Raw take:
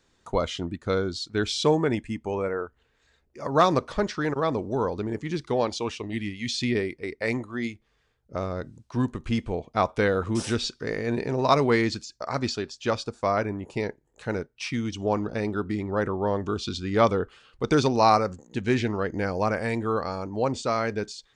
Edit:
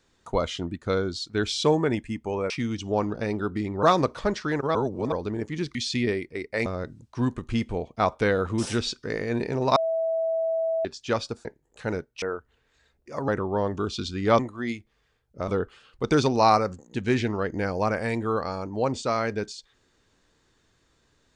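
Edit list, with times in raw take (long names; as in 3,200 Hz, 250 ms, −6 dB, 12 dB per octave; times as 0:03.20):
0:02.50–0:03.56: swap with 0:14.64–0:15.97
0:04.48–0:04.85: reverse
0:05.48–0:06.43: remove
0:07.34–0:08.43: move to 0:17.08
0:11.53–0:12.62: beep over 653 Hz −22.5 dBFS
0:13.22–0:13.87: remove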